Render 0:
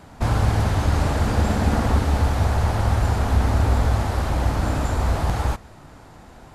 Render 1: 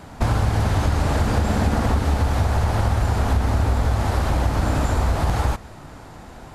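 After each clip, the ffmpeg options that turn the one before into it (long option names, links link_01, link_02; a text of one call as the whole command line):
ffmpeg -i in.wav -af "acompressor=threshold=-20dB:ratio=6,volume=4.5dB" out.wav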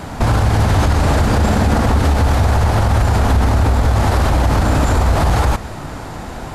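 ffmpeg -i in.wav -af "alimiter=level_in=17dB:limit=-1dB:release=50:level=0:latency=1,volume=-5dB" out.wav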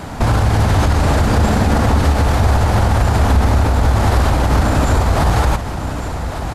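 ffmpeg -i in.wav -af "aecho=1:1:1155:0.316" out.wav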